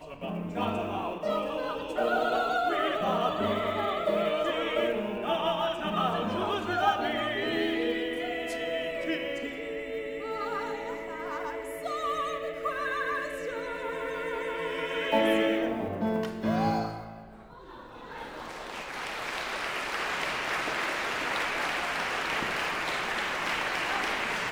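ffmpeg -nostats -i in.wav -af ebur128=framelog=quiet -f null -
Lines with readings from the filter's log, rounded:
Integrated loudness:
  I:         -30.2 LUFS
  Threshold: -40.4 LUFS
Loudness range:
  LRA:         5.5 LU
  Threshold: -50.4 LUFS
  LRA low:   -34.0 LUFS
  LRA high:  -28.5 LUFS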